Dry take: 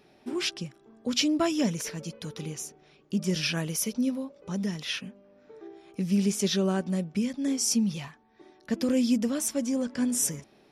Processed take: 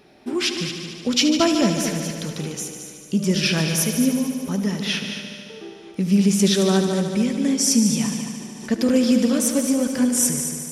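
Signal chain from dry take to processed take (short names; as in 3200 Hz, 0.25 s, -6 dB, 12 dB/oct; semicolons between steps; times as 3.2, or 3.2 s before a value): multi-head echo 74 ms, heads all three, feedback 59%, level -11.5 dB; 8.03–8.71 backwards sustainer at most 32 dB/s; gain +7 dB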